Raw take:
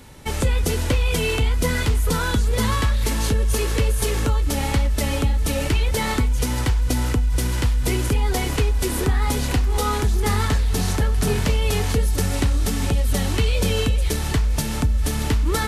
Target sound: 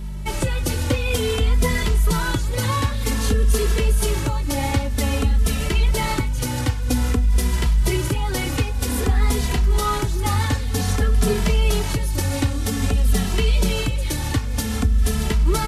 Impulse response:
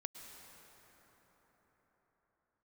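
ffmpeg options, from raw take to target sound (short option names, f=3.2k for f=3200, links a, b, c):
-filter_complex "[0:a]aeval=exprs='val(0)+0.0355*(sin(2*PI*50*n/s)+sin(2*PI*2*50*n/s)/2+sin(2*PI*3*50*n/s)/3+sin(2*PI*4*50*n/s)/4+sin(2*PI*5*50*n/s)/5)':c=same,asplit=2[a][b];[b]adelay=2.6,afreqshift=-0.52[c];[a][c]amix=inputs=2:normalize=1,volume=3dB"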